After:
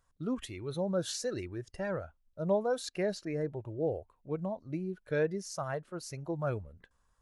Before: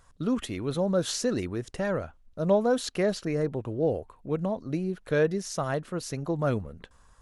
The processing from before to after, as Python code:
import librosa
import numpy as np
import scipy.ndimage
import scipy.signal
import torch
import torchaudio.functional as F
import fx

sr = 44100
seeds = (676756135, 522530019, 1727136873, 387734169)

y = fx.noise_reduce_blind(x, sr, reduce_db=9)
y = F.gain(torch.from_numpy(y), -6.0).numpy()